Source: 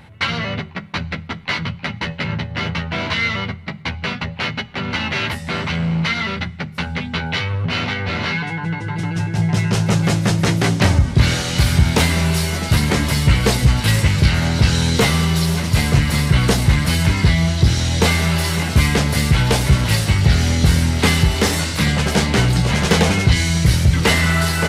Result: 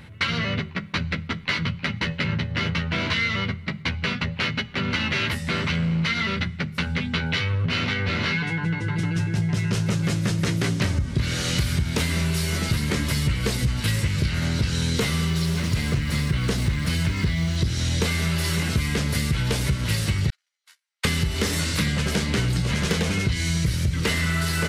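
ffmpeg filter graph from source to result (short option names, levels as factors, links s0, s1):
-filter_complex "[0:a]asettb=1/sr,asplit=3[s0][s1][s2];[s0]atrim=end=15.294[s3];[s1]atrim=start=15.29:end=17.56,asetpts=PTS-STARTPTS,afade=t=in:d=0.004:c=qsin,afade=t=out:st=2.266:d=0.004:c=qsin,highshelf=f=9500:g=-8,acrusher=bits=8:dc=4:mix=0:aa=0.000001[s4];[s2]atrim=start=17.556[s5];[s3][s4]acrossfade=d=0.004:c1=hsin:c2=qsin[s6];[s6][s5]acrossfade=d=0.004:c1=qsin:c2=hsin,asettb=1/sr,asplit=3[s7][s8][s9];[s7]atrim=end=20.304[s10];[s8]atrim=start=20.3:end=21.05,asetpts=PTS-STARTPTS,afade=t=in:d=0.004:c=qsin,afade=t=out:st=0.746:d=0.004:c=qsin,highpass=f=870:w=0.5412,highpass=f=870:w=1.3066,agate=range=0.00141:threshold=0.0891:ratio=16:release=100:detection=peak[s11];[s9]atrim=start=21.046[s12];[s10][s11]acrossfade=d=0.004:c1=hsin:c2=qsin[s13];[s13][s12]acrossfade=d=0.004:c1=qsin:c2=hsin,equalizer=f=790:t=o:w=0.68:g=-9,acompressor=threshold=0.1:ratio=6"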